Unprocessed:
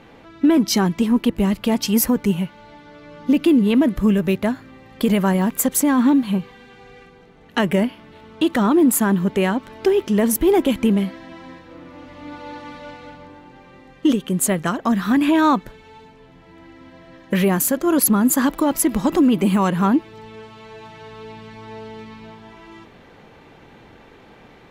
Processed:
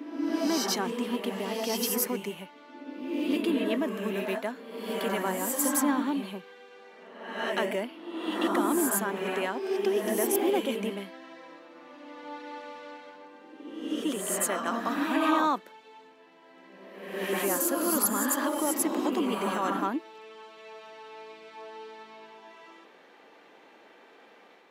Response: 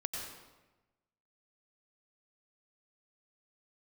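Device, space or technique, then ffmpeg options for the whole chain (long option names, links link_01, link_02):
ghost voice: -filter_complex "[0:a]areverse[link_01];[1:a]atrim=start_sample=2205[link_02];[link_01][link_02]afir=irnorm=-1:irlink=0,areverse,highpass=frequency=180:width=0.5412,highpass=frequency=180:width=1.3066,highpass=380,volume=-7.5dB"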